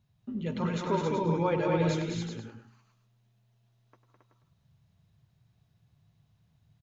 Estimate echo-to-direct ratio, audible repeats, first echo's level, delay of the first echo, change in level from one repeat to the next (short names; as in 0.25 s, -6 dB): 0.5 dB, 6, -12.0 dB, 98 ms, no steady repeat